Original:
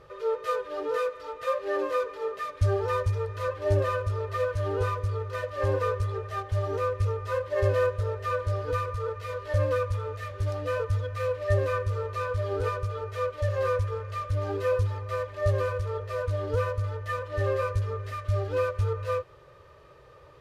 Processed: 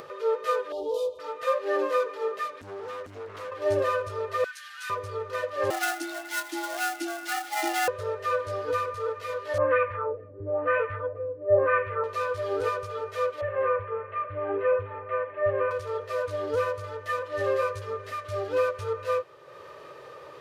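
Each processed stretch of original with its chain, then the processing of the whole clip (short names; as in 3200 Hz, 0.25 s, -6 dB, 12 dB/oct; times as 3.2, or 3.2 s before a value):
0.72–1.19 elliptic band-stop 880–3300 Hz, stop band 60 dB + resonant low shelf 110 Hz +13 dB, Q 3
2.47–3.52 compressor 5:1, threshold -34 dBFS + overloaded stage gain 35 dB + Doppler distortion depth 0.28 ms
4.44–4.9 elliptic high-pass 1500 Hz, stop band 80 dB + high shelf 4300 Hz +6.5 dB
5.7–7.88 switching dead time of 0.058 ms + tilt shelf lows -10 dB, about 1300 Hz + frequency shift +240 Hz
9.58–12.04 resonant high shelf 3600 Hz -11 dB, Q 1.5 + LFO low-pass sine 1 Hz 270–2300 Hz
13.41–15.71 steep low-pass 2500 Hz + doubler 35 ms -13.5 dB
whole clip: HPF 240 Hz 12 dB/oct; upward compressor, threshold -39 dBFS; gain +2.5 dB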